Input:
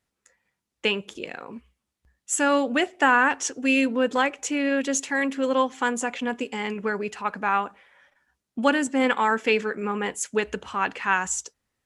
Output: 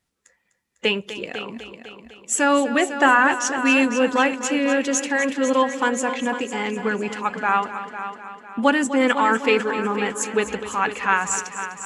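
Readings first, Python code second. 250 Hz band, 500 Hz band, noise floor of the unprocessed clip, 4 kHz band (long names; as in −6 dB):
+3.5 dB, +3.5 dB, −83 dBFS, +3.5 dB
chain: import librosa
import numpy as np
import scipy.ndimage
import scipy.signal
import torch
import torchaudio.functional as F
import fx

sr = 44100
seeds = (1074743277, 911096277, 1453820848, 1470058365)

p1 = fx.spec_quant(x, sr, step_db=15)
p2 = p1 + fx.echo_heads(p1, sr, ms=251, heads='first and second', feedback_pct=48, wet_db=-13.0, dry=0)
y = F.gain(torch.from_numpy(p2), 3.5).numpy()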